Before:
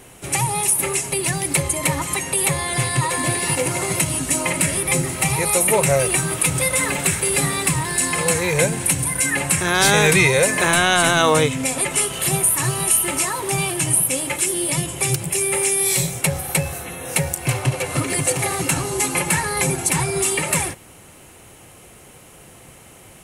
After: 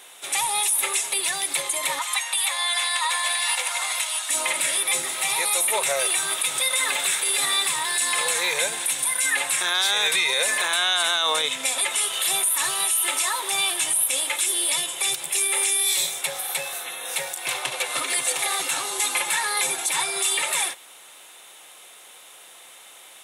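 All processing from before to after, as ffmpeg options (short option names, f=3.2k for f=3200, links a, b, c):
-filter_complex "[0:a]asettb=1/sr,asplit=3[a][b][c];[a]atrim=end=1.994[d];[b]atrim=start=1.99:end=4.3,asetpts=PTS-STARTPTS,afade=t=in:d=0.004:c=qsin,afade=t=out:st=2.306:d=0.004:c=qsin,highpass=f=690:w=0.5412,highpass=f=690:w=1.3066,highshelf=f=8.2k:g=-5.5[e];[c]atrim=start=4.296[f];[d][e]acrossfade=d=0.004:c1=hsin:c2=qsin[g];[g][f]acrossfade=d=0.004:c1=qsin:c2=hsin,highpass=800,equalizer=f=3.6k:w=6.9:g=14.5,alimiter=limit=-12.5dB:level=0:latency=1:release=37"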